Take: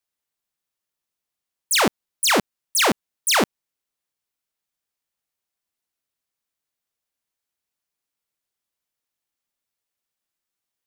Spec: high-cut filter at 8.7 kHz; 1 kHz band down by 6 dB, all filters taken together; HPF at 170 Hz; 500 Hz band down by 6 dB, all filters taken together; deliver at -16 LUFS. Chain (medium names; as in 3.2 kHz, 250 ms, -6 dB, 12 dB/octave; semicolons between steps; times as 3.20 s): high-pass 170 Hz; low-pass 8.7 kHz; peaking EQ 500 Hz -6 dB; peaking EQ 1 kHz -6 dB; trim +6.5 dB